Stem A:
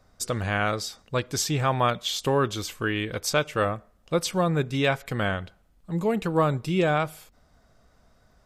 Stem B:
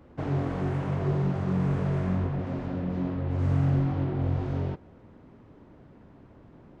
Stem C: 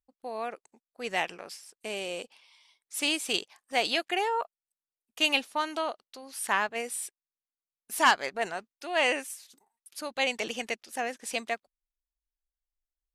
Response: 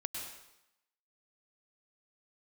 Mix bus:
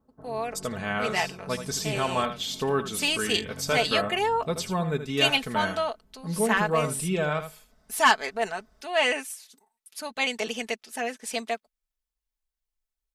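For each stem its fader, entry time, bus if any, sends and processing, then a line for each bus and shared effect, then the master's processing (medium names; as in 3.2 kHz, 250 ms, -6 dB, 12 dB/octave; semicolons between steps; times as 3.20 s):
-5.0 dB, 0.35 s, no send, echo send -10 dB, none
-17.0 dB, 0.00 s, no send, no echo send, steep low-pass 1.5 kHz
+1.0 dB, 0.00 s, no send, no echo send, none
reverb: none
echo: delay 79 ms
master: comb 4.6 ms, depth 62%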